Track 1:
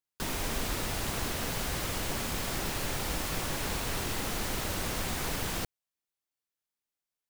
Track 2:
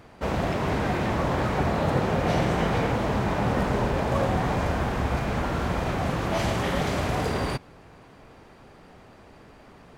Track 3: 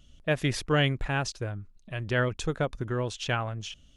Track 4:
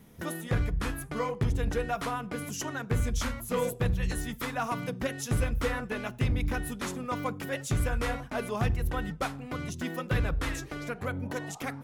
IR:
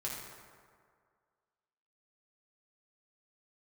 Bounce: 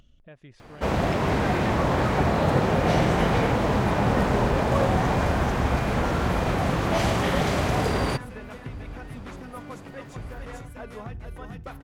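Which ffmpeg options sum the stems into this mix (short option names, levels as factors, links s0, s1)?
-filter_complex "[0:a]adelay=1700,volume=0.15,asplit=2[s0][s1];[s1]volume=0.282[s2];[1:a]adelay=600,volume=1.33[s3];[2:a]acompressor=threshold=0.00501:ratio=1.5,volume=0.224[s4];[3:a]adelay=2450,volume=0.531,asplit=2[s5][s6];[s6]volume=0.335[s7];[s0][s4][s5]amix=inputs=3:normalize=0,aemphasis=mode=reproduction:type=75kf,acompressor=threshold=0.02:ratio=4,volume=1[s8];[s2][s7]amix=inputs=2:normalize=0,aecho=0:1:441:1[s9];[s3][s8][s9]amix=inputs=3:normalize=0,acompressor=mode=upward:threshold=0.00501:ratio=2.5"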